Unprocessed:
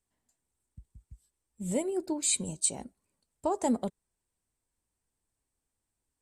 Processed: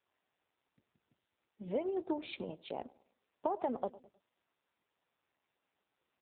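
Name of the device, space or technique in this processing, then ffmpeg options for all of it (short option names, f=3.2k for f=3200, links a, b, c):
voicemail: -filter_complex "[0:a]adynamicequalizer=threshold=0.001:dfrequency=2100:dqfactor=3.9:tfrequency=2100:tqfactor=3.9:attack=5:release=100:ratio=0.375:range=3:mode=cutabove:tftype=bell,highpass=400,lowpass=3k,asplit=2[a][b];[b]adelay=103,lowpass=f=1.2k:p=1,volume=-21dB,asplit=2[c][d];[d]adelay=103,lowpass=f=1.2k:p=1,volume=0.47,asplit=2[e][f];[f]adelay=103,lowpass=f=1.2k:p=1,volume=0.47[g];[a][c][e][g]amix=inputs=4:normalize=0,acompressor=threshold=-34dB:ratio=8,volume=4.5dB" -ar 8000 -c:a libopencore_amrnb -b:a 5900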